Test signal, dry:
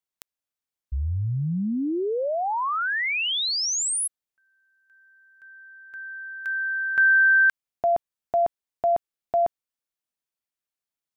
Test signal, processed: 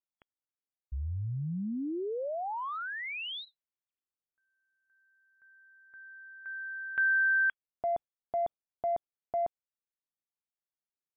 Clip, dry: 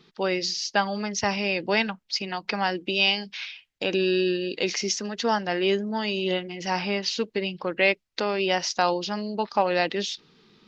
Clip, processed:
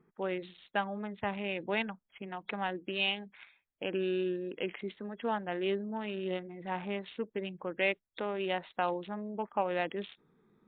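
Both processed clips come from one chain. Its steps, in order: local Wiener filter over 15 samples; trim -8 dB; MP3 64 kbps 8 kHz

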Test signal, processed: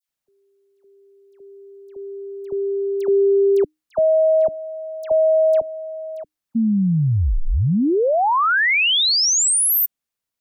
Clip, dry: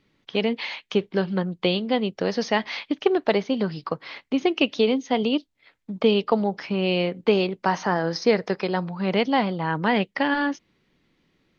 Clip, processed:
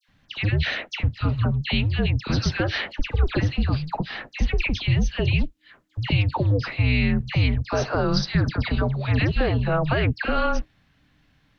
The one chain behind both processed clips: frequency shift -310 Hz; peak limiter -17 dBFS; phase dispersion lows, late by 84 ms, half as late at 1.7 kHz; trim +5 dB

